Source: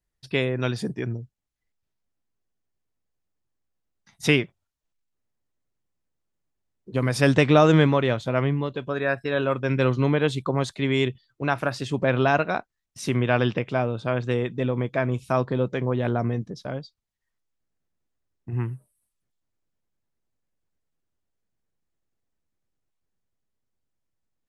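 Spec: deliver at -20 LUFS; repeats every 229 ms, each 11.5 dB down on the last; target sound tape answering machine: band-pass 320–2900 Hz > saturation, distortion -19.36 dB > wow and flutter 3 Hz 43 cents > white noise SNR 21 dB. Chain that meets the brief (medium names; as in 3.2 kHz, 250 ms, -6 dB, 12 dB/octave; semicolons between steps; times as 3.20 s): band-pass 320–2900 Hz; feedback delay 229 ms, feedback 27%, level -11.5 dB; saturation -10.5 dBFS; wow and flutter 3 Hz 43 cents; white noise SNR 21 dB; trim +7.5 dB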